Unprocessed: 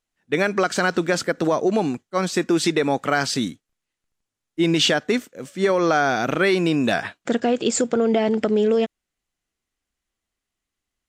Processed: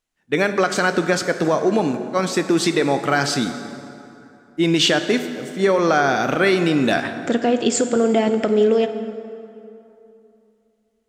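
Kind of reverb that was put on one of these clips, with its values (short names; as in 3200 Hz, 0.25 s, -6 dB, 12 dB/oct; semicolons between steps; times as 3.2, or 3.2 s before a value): plate-style reverb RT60 2.9 s, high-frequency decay 0.6×, DRR 8 dB; gain +1.5 dB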